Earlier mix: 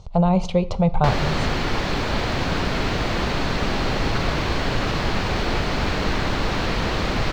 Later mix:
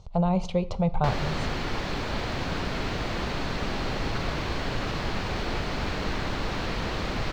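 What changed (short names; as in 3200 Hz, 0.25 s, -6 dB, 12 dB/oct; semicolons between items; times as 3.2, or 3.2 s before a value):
speech -6.0 dB; background -7.0 dB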